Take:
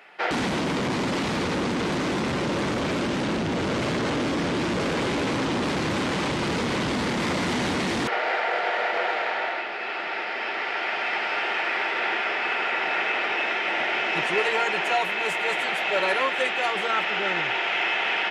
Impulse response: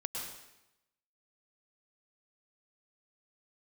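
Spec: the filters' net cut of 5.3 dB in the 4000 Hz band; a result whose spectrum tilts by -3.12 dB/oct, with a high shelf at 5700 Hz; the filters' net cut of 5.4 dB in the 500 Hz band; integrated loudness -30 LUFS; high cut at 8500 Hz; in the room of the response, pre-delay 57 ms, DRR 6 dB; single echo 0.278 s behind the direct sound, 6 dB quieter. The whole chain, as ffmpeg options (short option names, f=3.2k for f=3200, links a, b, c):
-filter_complex "[0:a]lowpass=8.5k,equalizer=f=500:t=o:g=-7,equalizer=f=4k:t=o:g=-5.5,highshelf=f=5.7k:g=-5.5,aecho=1:1:278:0.501,asplit=2[a][b];[1:a]atrim=start_sample=2205,adelay=57[c];[b][c]afir=irnorm=-1:irlink=0,volume=-7.5dB[d];[a][d]amix=inputs=2:normalize=0,volume=-4.5dB"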